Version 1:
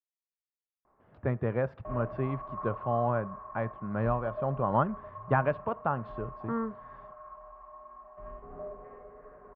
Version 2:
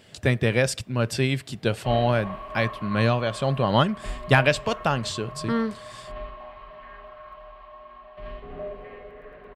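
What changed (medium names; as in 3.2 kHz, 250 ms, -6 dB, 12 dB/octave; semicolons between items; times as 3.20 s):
speech: entry -1.00 s; master: remove four-pole ladder low-pass 1.4 kHz, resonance 40%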